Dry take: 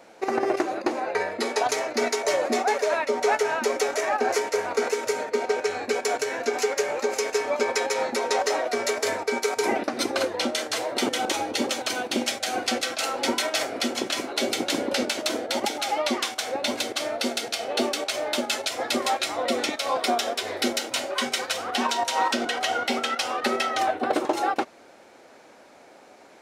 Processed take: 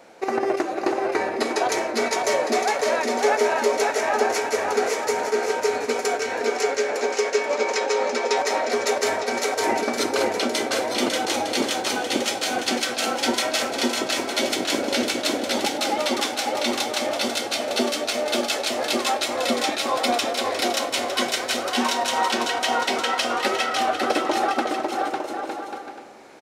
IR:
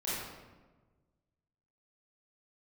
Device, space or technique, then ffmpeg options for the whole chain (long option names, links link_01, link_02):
compressed reverb return: -filter_complex "[0:a]asettb=1/sr,asplit=3[link_01][link_02][link_03];[link_01]atrim=end=6.204[link_04];[link_02]atrim=start=6.2:end=8.37,asetpts=PTS-STARTPTS,afade=type=in:duration=0.004:curve=qsin,afade=type=out:start_time=2.166:duration=0.004:curve=qsin,acrossover=split=190 7900:gain=0.158 1 0.0891[link_05][link_06][link_07];[link_05][link_06][link_07]amix=inputs=3:normalize=0[link_08];[link_03]atrim=start=8.366[link_09];[link_04][link_08]acrossfade=duration=0.004:curve1=hsin:curve2=qsin[link_10];[link_10][link_09]acrossfade=duration=0.004:curve1=qsin:curve2=hsin,aecho=1:1:550|907.5|1140|1291|1389:0.631|0.398|0.251|0.158|0.1,asplit=2[link_11][link_12];[1:a]atrim=start_sample=2205[link_13];[link_12][link_13]afir=irnorm=-1:irlink=0,acompressor=threshold=-23dB:ratio=6,volume=-11.5dB[link_14];[link_11][link_14]amix=inputs=2:normalize=0"